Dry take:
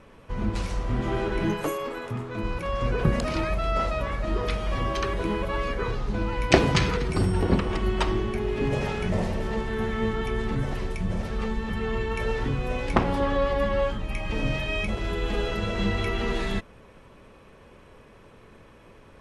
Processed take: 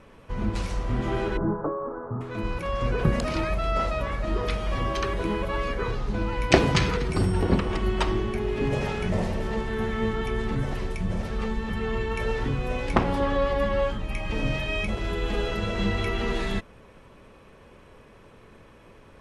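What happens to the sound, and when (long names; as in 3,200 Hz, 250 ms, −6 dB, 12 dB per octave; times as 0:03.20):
0:01.37–0:02.21: Butterworth low-pass 1,400 Hz 48 dB per octave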